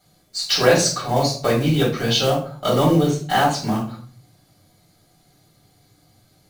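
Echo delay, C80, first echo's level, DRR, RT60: no echo, 11.5 dB, no echo, -7.0 dB, 0.45 s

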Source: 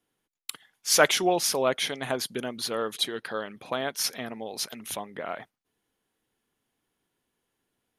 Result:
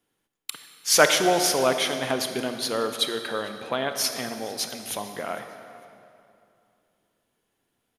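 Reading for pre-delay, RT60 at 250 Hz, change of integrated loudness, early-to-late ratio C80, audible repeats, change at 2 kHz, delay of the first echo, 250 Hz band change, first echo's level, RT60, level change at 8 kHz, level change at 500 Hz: 26 ms, 2.9 s, +3.5 dB, 8.5 dB, 2, +3.5 dB, 452 ms, +3.5 dB, -22.5 dB, 2.7 s, +3.0 dB, +3.5 dB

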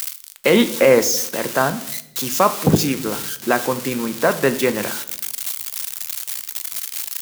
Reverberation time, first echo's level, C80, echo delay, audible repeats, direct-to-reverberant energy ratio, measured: 0.80 s, no echo, 18.0 dB, no echo, no echo, 11.0 dB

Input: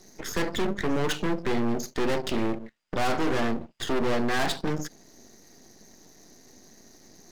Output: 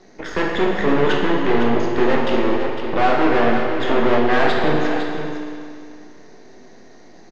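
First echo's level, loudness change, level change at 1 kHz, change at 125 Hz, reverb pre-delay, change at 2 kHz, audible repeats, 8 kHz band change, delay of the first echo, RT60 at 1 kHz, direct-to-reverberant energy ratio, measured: -8.5 dB, +9.5 dB, +11.5 dB, +6.0 dB, 18 ms, +10.0 dB, 1, no reading, 506 ms, 2.3 s, -1.0 dB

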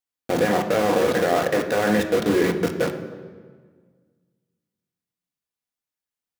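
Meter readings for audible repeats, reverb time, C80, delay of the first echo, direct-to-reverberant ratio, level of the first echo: no echo, 1.6 s, 10.5 dB, no echo, 4.0 dB, no echo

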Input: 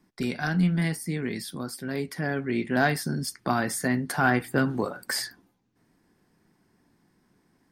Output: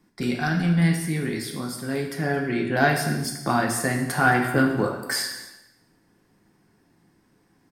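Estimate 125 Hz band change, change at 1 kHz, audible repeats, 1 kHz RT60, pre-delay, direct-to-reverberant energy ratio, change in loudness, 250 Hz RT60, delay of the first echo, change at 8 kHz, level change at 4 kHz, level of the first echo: +4.0 dB, +4.5 dB, 1, 1.0 s, 3 ms, 1.5 dB, +3.5 dB, 1.0 s, 220 ms, +3.5 dB, +3.5 dB, -17.5 dB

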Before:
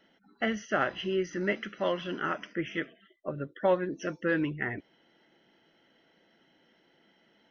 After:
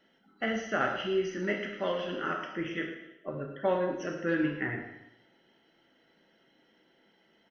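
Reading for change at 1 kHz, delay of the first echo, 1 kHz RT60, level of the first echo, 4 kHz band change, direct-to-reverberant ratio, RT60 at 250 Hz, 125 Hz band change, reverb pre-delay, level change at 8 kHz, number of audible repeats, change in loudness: -0.5 dB, 112 ms, 0.85 s, -12.5 dB, -0.5 dB, 1.5 dB, 0.90 s, -1.0 dB, 7 ms, no reading, 1, -0.5 dB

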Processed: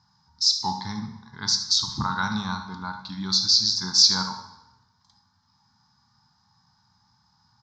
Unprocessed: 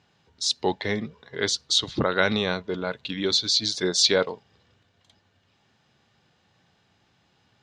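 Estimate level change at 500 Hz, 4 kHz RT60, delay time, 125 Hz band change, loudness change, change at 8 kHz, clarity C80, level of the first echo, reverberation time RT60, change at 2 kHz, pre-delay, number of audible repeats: -22.5 dB, 0.80 s, 74 ms, +0.5 dB, +2.0 dB, +3.0 dB, 10.5 dB, -14.0 dB, 0.90 s, -5.5 dB, 12 ms, 1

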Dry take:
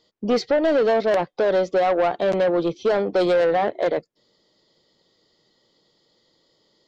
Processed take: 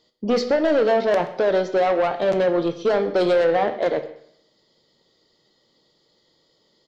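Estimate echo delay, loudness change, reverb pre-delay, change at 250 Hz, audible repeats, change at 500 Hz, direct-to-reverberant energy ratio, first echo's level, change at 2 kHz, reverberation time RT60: 127 ms, +0.5 dB, 13 ms, +0.5 dB, 1, +0.5 dB, 8.0 dB, -19.5 dB, +0.5 dB, 0.65 s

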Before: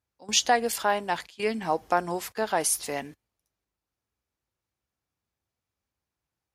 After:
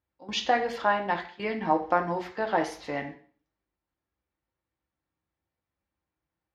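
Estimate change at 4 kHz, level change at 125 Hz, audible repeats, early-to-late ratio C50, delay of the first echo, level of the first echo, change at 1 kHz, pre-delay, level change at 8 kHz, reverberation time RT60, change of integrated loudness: -5.5 dB, +2.0 dB, no echo, 10.5 dB, no echo, no echo, 0.0 dB, 3 ms, -19.5 dB, 0.50 s, -1.5 dB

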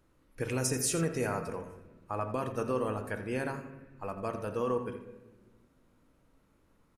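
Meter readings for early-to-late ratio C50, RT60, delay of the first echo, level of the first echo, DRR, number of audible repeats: 8.0 dB, 1.2 s, 85 ms, -12.0 dB, 5.5 dB, 1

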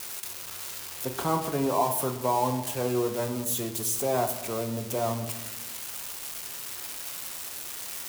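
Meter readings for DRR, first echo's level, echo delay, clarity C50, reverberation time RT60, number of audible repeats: 5.5 dB, no echo, no echo, 10.0 dB, 1.0 s, no echo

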